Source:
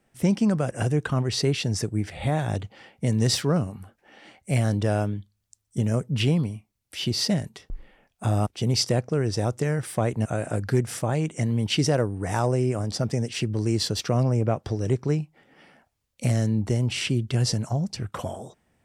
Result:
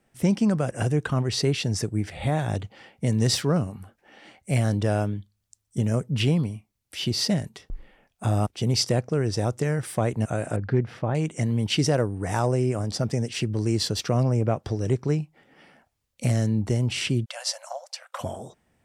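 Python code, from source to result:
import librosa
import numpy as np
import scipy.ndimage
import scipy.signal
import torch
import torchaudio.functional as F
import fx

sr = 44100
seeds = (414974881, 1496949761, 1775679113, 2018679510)

y = fx.air_absorb(x, sr, metres=310.0, at=(10.56, 11.15))
y = fx.brickwall_highpass(y, sr, low_hz=510.0, at=(17.24, 18.2), fade=0.02)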